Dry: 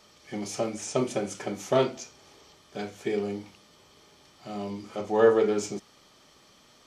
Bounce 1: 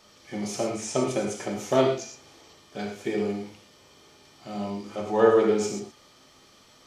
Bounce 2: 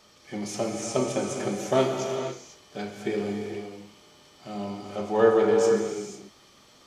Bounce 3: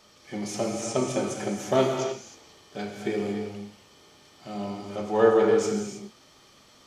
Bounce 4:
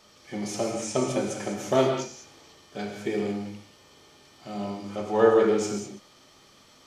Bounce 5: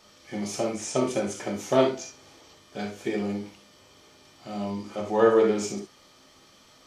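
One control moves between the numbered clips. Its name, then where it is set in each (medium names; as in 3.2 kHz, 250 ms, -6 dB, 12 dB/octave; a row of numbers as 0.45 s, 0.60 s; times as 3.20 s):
gated-style reverb, gate: 140 ms, 530 ms, 340 ms, 220 ms, 90 ms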